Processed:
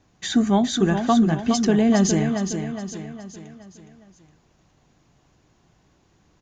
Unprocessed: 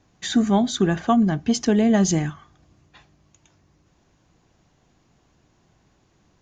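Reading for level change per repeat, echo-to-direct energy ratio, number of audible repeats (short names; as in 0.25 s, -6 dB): -6.5 dB, -6.0 dB, 5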